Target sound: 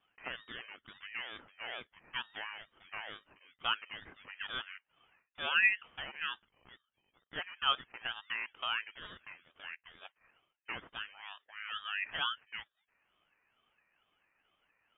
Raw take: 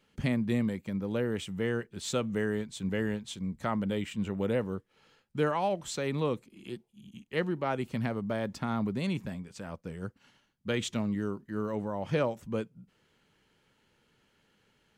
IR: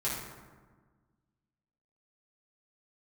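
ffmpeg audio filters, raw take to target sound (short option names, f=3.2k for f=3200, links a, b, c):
-af "highpass=f=810:t=q:w=4.9,lowpass=f=2.6k:t=q:w=0.5098,lowpass=f=2.6k:t=q:w=0.6013,lowpass=f=2.6k:t=q:w=0.9,lowpass=f=2.6k:t=q:w=2.563,afreqshift=-3000,aeval=exprs='val(0)*sin(2*PI*610*n/s+610*0.6/2.2*sin(2*PI*2.2*n/s))':c=same,volume=-4.5dB"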